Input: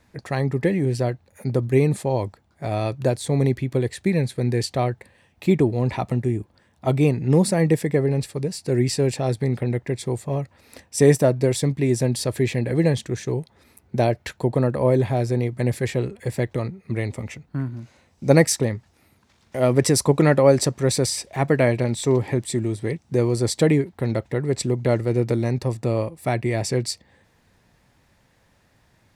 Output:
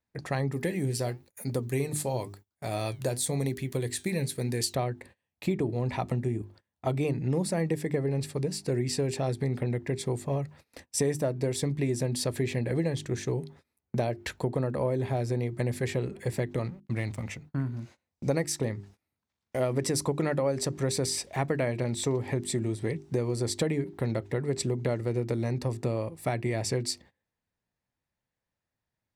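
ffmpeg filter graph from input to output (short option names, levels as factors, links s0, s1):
-filter_complex "[0:a]asettb=1/sr,asplit=3[s0][s1][s2];[s0]atrim=end=0.524[s3];[s1]atrim=start=0.52:end=4.75,asetpts=PTS-STARTPTS,afade=t=in:d=0.004:c=qsin,afade=t=out:st=4.226:d=0.004:c=qsin,aemphasis=mode=production:type=75kf,flanger=delay=3.1:depth=7:regen=77:speed=1:shape=triangular[s4];[s2]atrim=start=4.746[s5];[s3][s4]acrossfade=d=0.004:c1=hsin:c2=qsin[s6];[s6][s5]acrossfade=d=0.004:c1=qsin:c2=hsin,asettb=1/sr,asplit=3[s7][s8][s9];[s7]atrim=end=16.644[s10];[s8]atrim=start=16.64:end=17.27,asetpts=PTS-STARTPTS,afade=t=in:d=0.004:c=qsin,afade=t=out:st=0.626:d=0.004:c=qsin,equalizer=f=420:t=o:w=0.5:g=-10,aeval=exprs='sgn(val(0))*max(abs(val(0))-0.00447,0)':c=same[s11];[s9]atrim=start=17.266[s12];[s10][s11]acrossfade=d=0.004:c1=hsin:c2=qsin[s13];[s13][s12]acrossfade=d=0.004:c1=qsin:c2=hsin,bandreject=f=50:t=h:w=6,bandreject=f=100:t=h:w=6,bandreject=f=150:t=h:w=6,bandreject=f=200:t=h:w=6,bandreject=f=250:t=h:w=6,bandreject=f=300:t=h:w=6,bandreject=f=350:t=h:w=6,bandreject=f=400:t=h:w=6,agate=range=0.0562:threshold=0.00501:ratio=16:detection=peak,acompressor=threshold=0.0708:ratio=5,volume=0.794"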